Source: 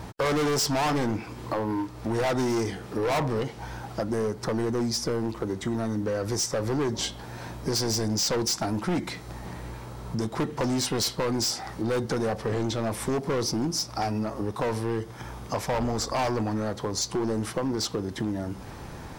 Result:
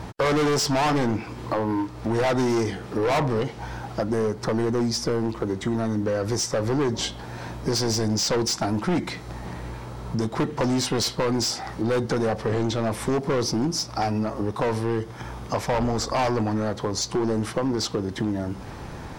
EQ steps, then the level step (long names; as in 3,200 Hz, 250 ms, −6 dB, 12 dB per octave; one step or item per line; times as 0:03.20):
high-shelf EQ 9,100 Hz −9 dB
+3.5 dB